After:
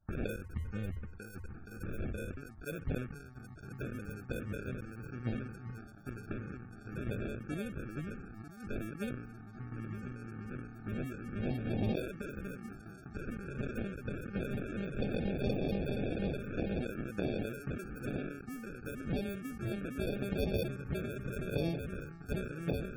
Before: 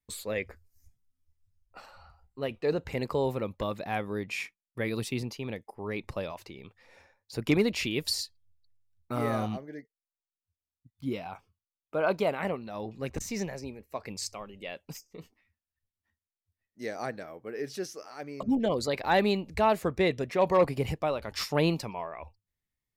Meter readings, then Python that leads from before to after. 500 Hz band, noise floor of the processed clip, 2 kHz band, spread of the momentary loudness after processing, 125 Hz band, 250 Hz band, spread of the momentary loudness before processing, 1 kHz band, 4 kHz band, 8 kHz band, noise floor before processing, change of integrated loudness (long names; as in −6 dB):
−9.5 dB, −51 dBFS, −8.0 dB, 12 LU, −0.5 dB, −4.0 dB, 16 LU, −16.5 dB, −14.0 dB, −16.0 dB, below −85 dBFS, −8.5 dB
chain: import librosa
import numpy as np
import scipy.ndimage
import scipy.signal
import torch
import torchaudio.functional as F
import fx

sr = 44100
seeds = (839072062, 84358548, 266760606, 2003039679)

p1 = x + fx.echo_opening(x, sr, ms=472, hz=200, octaves=2, feedback_pct=70, wet_db=-3, dry=0)
p2 = fx.gate_flip(p1, sr, shuts_db=-22.0, range_db=-27)
p3 = fx.over_compress(p2, sr, threshold_db=-47.0, ratio=-1.0)
p4 = fx.sample_hold(p3, sr, seeds[0], rate_hz=1000.0, jitter_pct=0)
p5 = fx.high_shelf(p4, sr, hz=7700.0, db=10.5)
p6 = fx.spec_topn(p5, sr, count=64)
p7 = fx.low_shelf(p6, sr, hz=120.0, db=4.5)
p8 = fx.tremolo_random(p7, sr, seeds[1], hz=3.5, depth_pct=75)
p9 = fx.env_phaser(p8, sr, low_hz=430.0, high_hz=1400.0, full_db=-40.0)
p10 = fx.sustainer(p9, sr, db_per_s=57.0)
y = p10 * librosa.db_to_amplitude(11.0)